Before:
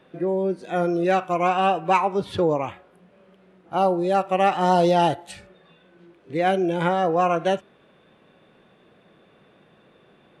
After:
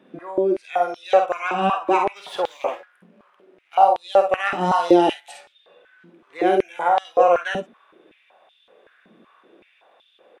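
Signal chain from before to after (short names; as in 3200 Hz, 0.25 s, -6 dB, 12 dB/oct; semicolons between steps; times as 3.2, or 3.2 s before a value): notch 4400 Hz, Q 15; on a send: early reflections 51 ms -6 dB, 63 ms -9 dB; 2.16–3.75 on the sum: sample leveller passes 1; 6.58–7.05 band shelf 3500 Hz -8 dB 1.3 oct; stepped high-pass 5.3 Hz 230–3400 Hz; gain -3 dB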